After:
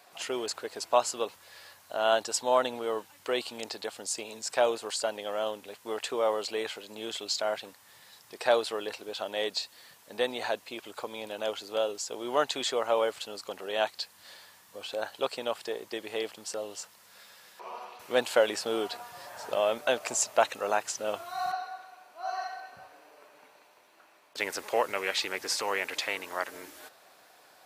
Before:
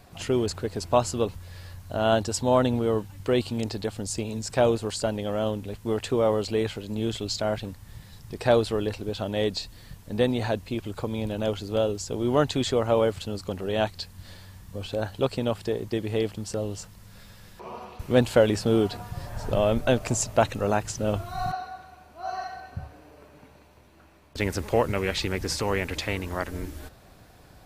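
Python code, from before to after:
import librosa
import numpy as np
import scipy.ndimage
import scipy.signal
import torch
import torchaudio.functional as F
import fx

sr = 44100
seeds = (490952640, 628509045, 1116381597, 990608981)

y = scipy.signal.sosfilt(scipy.signal.butter(2, 620.0, 'highpass', fs=sr, output='sos'), x)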